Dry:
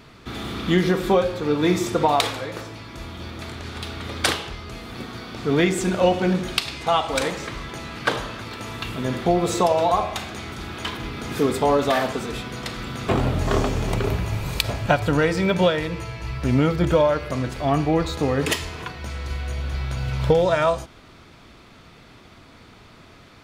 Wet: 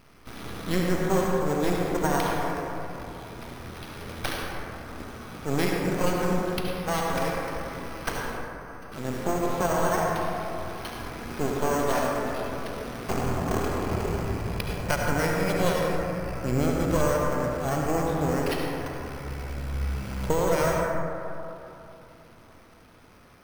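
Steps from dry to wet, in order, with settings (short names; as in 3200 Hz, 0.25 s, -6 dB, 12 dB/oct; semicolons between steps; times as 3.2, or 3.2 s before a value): wow and flutter 15 cents; 8.37–8.92 ladder band-pass 1300 Hz, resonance 35%; half-wave rectifier; careless resampling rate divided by 6×, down filtered, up hold; reverb RT60 3.0 s, pre-delay 63 ms, DRR -1 dB; gain -4.5 dB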